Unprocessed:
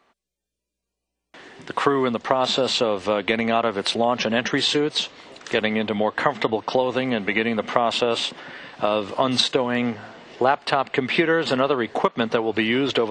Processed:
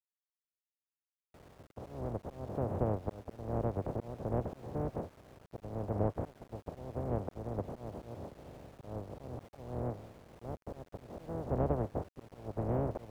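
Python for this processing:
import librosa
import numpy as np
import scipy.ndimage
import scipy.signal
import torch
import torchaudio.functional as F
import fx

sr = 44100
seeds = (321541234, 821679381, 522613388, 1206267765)

y = fx.spec_flatten(x, sr, power=0.11)
y = fx.peak_eq(y, sr, hz=87.0, db=14.0, octaves=1.8)
y = fx.auto_swell(y, sr, attack_ms=382.0)
y = fx.ladder_lowpass(y, sr, hz=750.0, resonance_pct=35)
y = np.where(np.abs(y) >= 10.0 ** (-56.5 / 20.0), y, 0.0)
y = fx.vibrato(y, sr, rate_hz=6.3, depth_cents=34.0)
y = y * 10.0 ** (1.0 / 20.0)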